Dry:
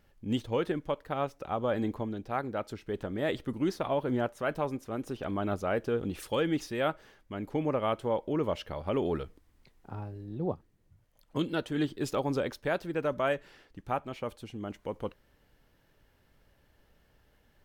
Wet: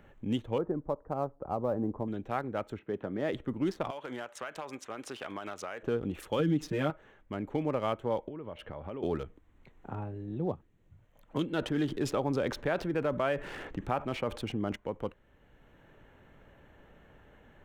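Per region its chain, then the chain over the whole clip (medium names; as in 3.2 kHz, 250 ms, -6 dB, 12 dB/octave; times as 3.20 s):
0.58–2.08 s: low-pass 1.1 kHz 24 dB/octave + short-mantissa float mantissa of 6-bit
2.79–3.33 s: high-pass 140 Hz + distance through air 290 m
3.90–5.83 s: frequency weighting ITU-R 468 + compression 10:1, threshold -36 dBFS
6.39–6.90 s: peaking EQ 190 Hz +12 dB 1.3 oct + comb 6.6 ms, depth 99% + compression 2:1, threshold -27 dBFS
8.28–9.03 s: inverse Chebyshev low-pass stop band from 11 kHz, stop band 50 dB + compression 5:1, threshold -41 dBFS
11.58–14.76 s: treble shelf 7.2 kHz -6.5 dB + level flattener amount 50%
whole clip: local Wiener filter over 9 samples; three bands compressed up and down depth 40%; trim -1 dB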